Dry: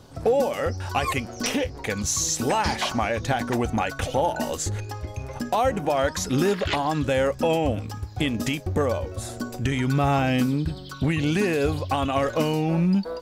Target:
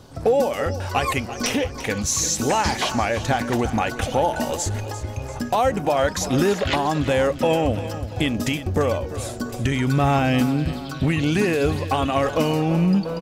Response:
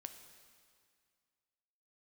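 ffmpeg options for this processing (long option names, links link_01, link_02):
-af "aecho=1:1:343|686|1029|1372|1715:0.211|0.108|0.055|0.028|0.0143,volume=2.5dB"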